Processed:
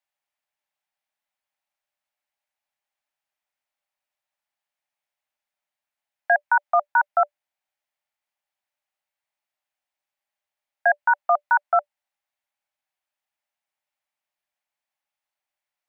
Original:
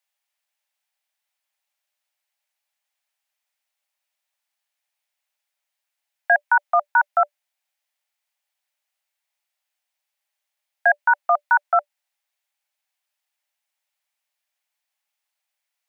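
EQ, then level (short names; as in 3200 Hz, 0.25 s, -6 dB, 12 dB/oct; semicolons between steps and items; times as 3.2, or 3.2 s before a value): high shelf 2000 Hz -11 dB; +1.0 dB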